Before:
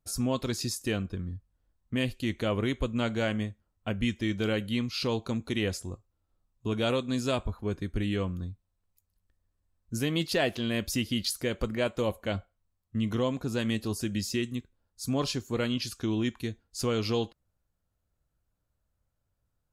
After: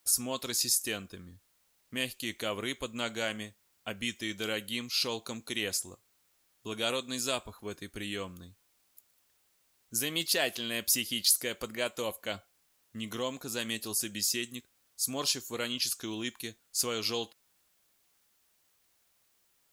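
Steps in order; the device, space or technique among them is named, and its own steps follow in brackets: turntable without a phono preamp (RIAA curve recording; white noise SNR 36 dB); trim -3 dB

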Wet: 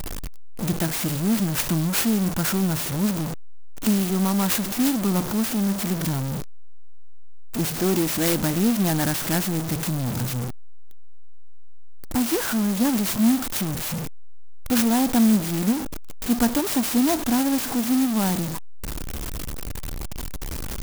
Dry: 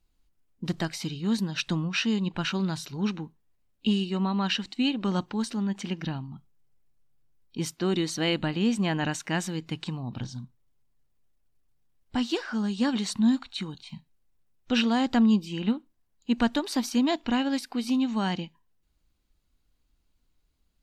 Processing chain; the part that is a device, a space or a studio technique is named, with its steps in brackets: early CD player with a faulty converter (jump at every zero crossing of -24.5 dBFS; sampling jitter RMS 0.11 ms); trim +1.5 dB

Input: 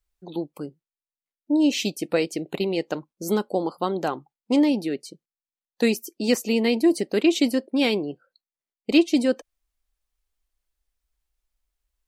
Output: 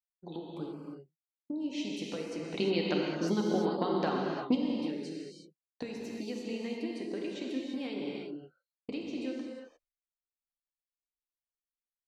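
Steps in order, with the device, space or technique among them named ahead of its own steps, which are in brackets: expander -42 dBFS; serial compression, peaks first (compression, threshold -26 dBFS, peak gain reduction 13.5 dB; compression 2.5:1, threshold -34 dBFS, peak gain reduction 7.5 dB); 2.55–4.55 s: FFT filter 110 Hz 0 dB, 200 Hz +12 dB, 550 Hz +6 dB, 4.6 kHz +14 dB, 7.1 kHz +1 dB; distance through air 100 m; gated-style reverb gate 380 ms flat, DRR -2 dB; trim -5 dB

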